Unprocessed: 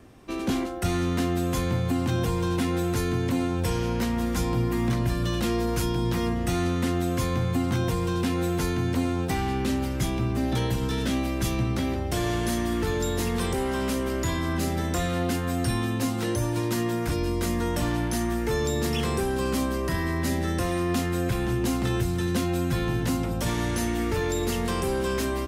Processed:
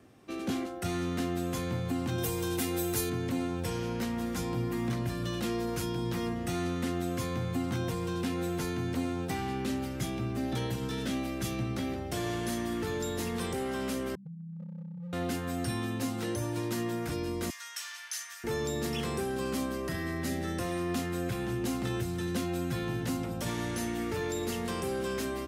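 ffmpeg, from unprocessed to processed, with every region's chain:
-filter_complex "[0:a]asettb=1/sr,asplit=3[s0][s1][s2];[s0]atrim=end=2.184[s3];[s1]atrim=start=2.18:end=3.1,asetpts=PTS-STARTPTS,afade=t=in:d=0.004:c=qsin,afade=t=out:st=0.916:d=0.004:c=qsin,aemphasis=mode=production:type=50fm,aecho=1:1:2.5:0.35,atrim=end_sample=40572[s4];[s2]atrim=start=3.096[s5];[s3][s4]acrossfade=d=0.004:c1=hsin:c2=qsin[s6];[s6][s5]acrossfade=d=0.004:c1=qsin:c2=hsin,asettb=1/sr,asplit=3[s7][s8][s9];[s7]atrim=end=14.154[s10];[s8]atrim=start=14.15:end=15.13,asetpts=PTS-STARTPTS,afade=t=in:d=0.004:c=qsin,afade=t=out:st=0.976:d=0.004:c=qsin,asuperpass=centerf=170:order=8:qfactor=2.9,asoftclip=type=hard:threshold=0.0266[s11];[s9]atrim=start=15.126[s12];[s10][s11]acrossfade=d=0.004:c1=hsin:c2=qsin[s13];[s13][s12]acrossfade=d=0.004:c1=qsin:c2=hsin,asettb=1/sr,asplit=3[s14][s15][s16];[s14]atrim=end=17.504[s17];[s15]atrim=start=17.5:end=18.44,asetpts=PTS-STARTPTS,afade=t=in:d=0.004:c=qsin,afade=t=out:st=0.936:d=0.004:c=qsin,highpass=f=1400:w=0.5412,highpass=f=1400:w=1.3066,equalizer=f=5900:t=o:w=0.68:g=7.5[s18];[s16]atrim=start=18.436[s19];[s17][s18]acrossfade=d=0.004:c1=hsin:c2=qsin[s20];[s20][s19]acrossfade=d=0.004:c1=qsin:c2=hsin,highpass=95,bandreject=f=990:w=14,volume=0.501"

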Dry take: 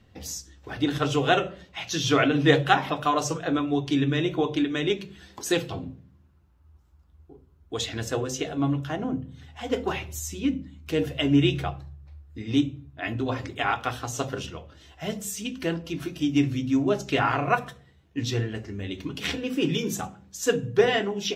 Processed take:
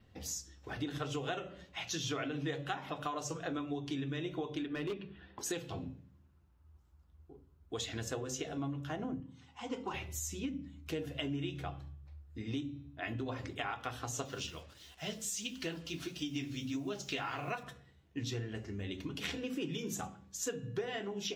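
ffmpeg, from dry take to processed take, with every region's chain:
-filter_complex "[0:a]asettb=1/sr,asplit=3[s0][s1][s2];[s0]atrim=end=4.664[s3];[s1]atrim=start=4.66:end=5.39,asetpts=PTS-STARTPTS,afade=t=in:d=0.004:c=qsin,afade=t=out:st=0.726:d=0.004:c=qsin,lowpass=f=2900:w=0.5412,lowpass=f=2900:w=1.3066,bandreject=f=2200:w=8.5,volume=12.6,asoftclip=hard,volume=0.0794[s4];[s2]atrim=start=5.386[s5];[s3][s4]acrossfade=d=0.004:c1=hsin:c2=qsin[s6];[s6][s5]acrossfade=d=0.004:c1=qsin:c2=hsin,asettb=1/sr,asplit=3[s7][s8][s9];[s7]atrim=end=9.204[s10];[s8]atrim=start=9.2:end=9.94,asetpts=PTS-STARTPTS,afade=t=in:d=0.004:c=qsin,afade=t=out:st=0.736:d=0.004:c=qsin,highpass=f=110:w=0.5412,highpass=f=110:w=1.3066,equalizer=f=140:t=q:w=4:g=-8,equalizer=f=410:t=q:w=4:g=-7,equalizer=f=630:t=q:w=4:g=-6,equalizer=f=960:t=q:w=4:g=6,equalizer=f=1700:t=q:w=4:g=-9,equalizer=f=3600:t=q:w=4:g=-5,lowpass=f=8800:w=0.5412,lowpass=f=8800:w=1.3066,bandreject=f=660:w=9[s11];[s9]atrim=start=9.936[s12];[s10][s11]acrossfade=d=0.004:c1=hsin:c2=qsin[s13];[s13][s12]acrossfade=d=0.004:c1=qsin:c2=hsin,asettb=1/sr,asplit=3[s14][s15][s16];[s14]atrim=end=14.254[s17];[s15]atrim=start=14.25:end=17.63,asetpts=PTS-STARTPTS,afade=t=in:d=0.004:c=qsin,afade=t=out:st=3.376:d=0.004:c=qsin,equalizer=f=4400:w=0.65:g=10,acrusher=bits=7:mix=0:aa=0.5,flanger=delay=4.1:depth=9.2:regen=-38:speed=1.5:shape=sinusoidal[s18];[s16]atrim=start=17.626[s19];[s17][s18]acrossfade=d=0.004:c1=hsin:c2=qsin[s20];[s20][s19]acrossfade=d=0.004:c1=qsin:c2=hsin,bandreject=f=285.1:t=h:w=4,bandreject=f=570.2:t=h:w=4,bandreject=f=855.3:t=h:w=4,bandreject=f=1140.4:t=h:w=4,bandreject=f=1425.5:t=h:w=4,bandreject=f=1710.6:t=h:w=4,bandreject=f=1995.7:t=h:w=4,bandreject=f=2280.8:t=h:w=4,bandreject=f=2565.9:t=h:w=4,bandreject=f=2851:t=h:w=4,bandreject=f=3136.1:t=h:w=4,bandreject=f=3421.2:t=h:w=4,bandreject=f=3706.3:t=h:w=4,bandreject=f=3991.4:t=h:w=4,bandreject=f=4276.5:t=h:w=4,bandreject=f=4561.6:t=h:w=4,bandreject=f=4846.7:t=h:w=4,bandreject=f=5131.8:t=h:w=4,bandreject=f=5416.9:t=h:w=4,bandreject=f=5702:t=h:w=4,adynamicequalizer=threshold=0.00316:dfrequency=6900:dqfactor=6.3:tfrequency=6900:tqfactor=6.3:attack=5:release=100:ratio=0.375:range=2.5:mode=boostabove:tftype=bell,acompressor=threshold=0.0355:ratio=6,volume=0.501"

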